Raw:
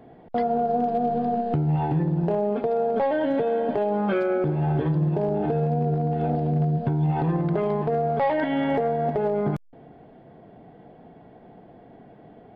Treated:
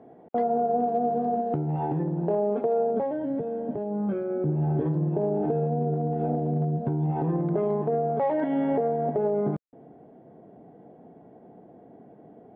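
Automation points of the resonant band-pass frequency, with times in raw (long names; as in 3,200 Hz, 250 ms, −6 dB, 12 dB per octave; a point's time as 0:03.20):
resonant band-pass, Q 0.65
0:02.77 460 Hz
0:03.23 130 Hz
0:04.24 130 Hz
0:04.92 350 Hz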